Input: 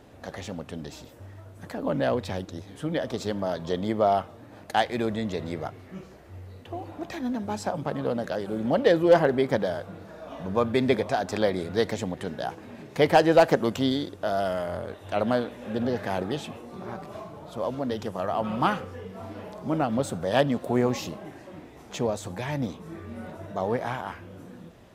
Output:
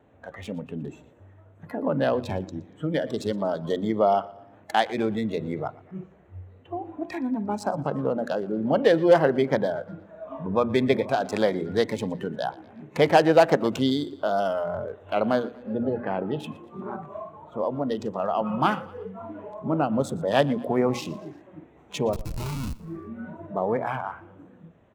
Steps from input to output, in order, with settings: local Wiener filter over 9 samples; high-pass 46 Hz 24 dB/octave; hum notches 60/120/180/240/300/360 Hz; wow and flutter 25 cents; in parallel at -1 dB: compression 6:1, threshold -33 dBFS, peak gain reduction 19 dB; 22.13–22.80 s: on the sum: Schmitt trigger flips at -28.5 dBFS; spectral noise reduction 12 dB; 15.62–16.40 s: distance through air 390 m; on a send: feedback delay 118 ms, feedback 47%, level -21 dB

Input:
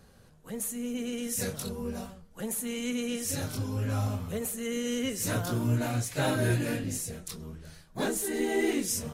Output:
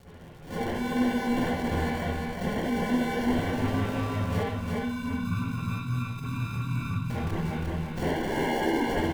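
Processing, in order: CVSD coder 64 kbps; 4.43–7.10 s: inverse Chebyshev low-pass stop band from 640 Hz, stop band 60 dB; compression 6:1, threshold -36 dBFS, peak gain reduction 12 dB; one-sided clip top -34 dBFS; sample-and-hold 35×; crackle 97 per s -46 dBFS; flange 1.8 Hz, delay 1.3 ms, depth 5.7 ms, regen -39%; feedback delay 353 ms, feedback 28%, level -3 dB; reverberation, pre-delay 48 ms, DRR -7.5 dB; attacks held to a fixed rise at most 180 dB/s; trim +6 dB

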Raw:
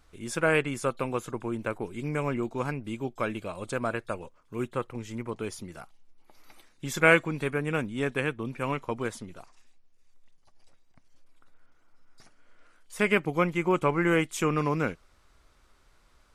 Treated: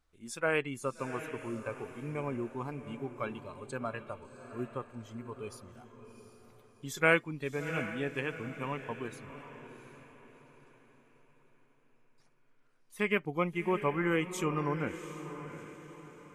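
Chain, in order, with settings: spectral noise reduction 10 dB; echo that smears into a reverb 714 ms, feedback 42%, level -11 dB; trim -5.5 dB

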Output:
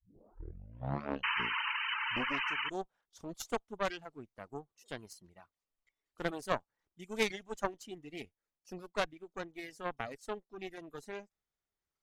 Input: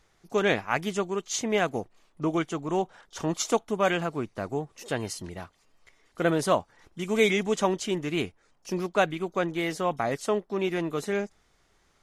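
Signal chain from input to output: tape start-up on the opening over 2.81 s; Chebyshev shaper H 3 -13 dB, 4 -17 dB, 5 -34 dB, 7 -35 dB, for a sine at -9 dBFS; painted sound noise, 1.23–2.70 s, 850–3100 Hz -26 dBFS; reverb removal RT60 1.9 s; trim -6 dB

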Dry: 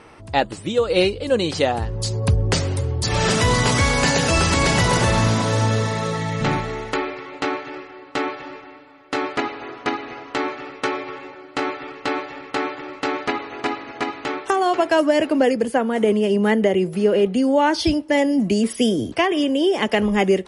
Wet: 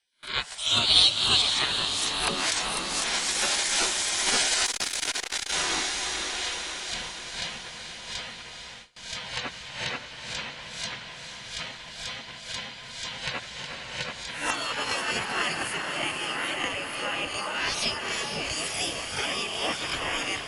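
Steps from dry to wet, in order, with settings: reverse spectral sustain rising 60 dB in 0.50 s; small resonant body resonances 1.2/2.7 kHz, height 15 dB, ringing for 35 ms; spectral gate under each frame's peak -20 dB weak; 0.58–1.42 s: resonant high shelf 2.7 kHz +7.5 dB, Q 3; 13.40–13.82 s: compression, threshold -36 dBFS, peak gain reduction 8 dB; echo that smears into a reverb 479 ms, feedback 62%, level -7 dB; gate with hold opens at -33 dBFS; 4.66–5.53 s: transformer saturation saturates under 2.1 kHz

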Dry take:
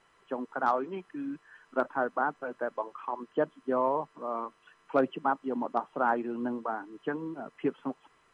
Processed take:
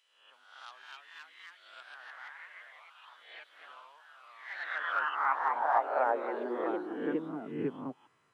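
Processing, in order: reverse spectral sustain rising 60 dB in 0.73 s; ever faster or slower copies 334 ms, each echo +2 st, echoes 3; high-pass sweep 3.1 kHz -> 110 Hz, 4.10–7.95 s; trim -8 dB

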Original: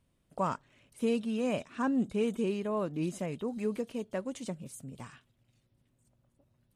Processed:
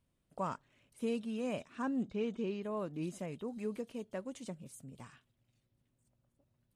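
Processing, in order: 2.03–2.63 s: low-pass 5.8 kHz 24 dB/octave; trim -6 dB

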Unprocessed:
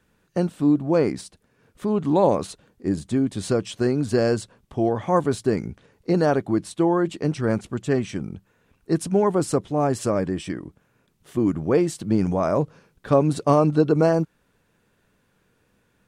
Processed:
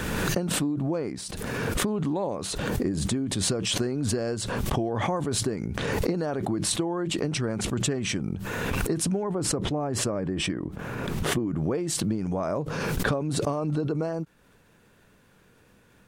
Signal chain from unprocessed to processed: compression 12:1, threshold -31 dBFS, peak gain reduction 19 dB; 9.23–11.56 s: treble shelf 3.3 kHz -10 dB; swell ahead of each attack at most 21 dB/s; trim +6 dB

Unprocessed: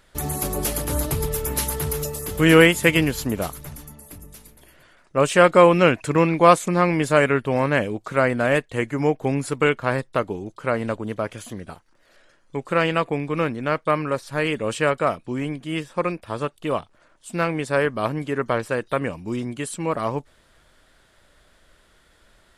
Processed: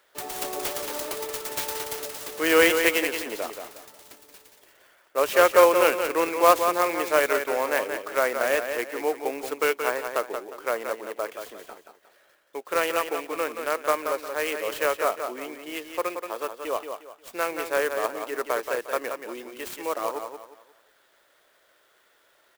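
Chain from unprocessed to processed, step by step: high-pass 380 Hz 24 dB/octave; on a send: feedback delay 178 ms, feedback 32%, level -7 dB; on the sum: sampling jitter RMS 0.032 ms; trim -3.5 dB

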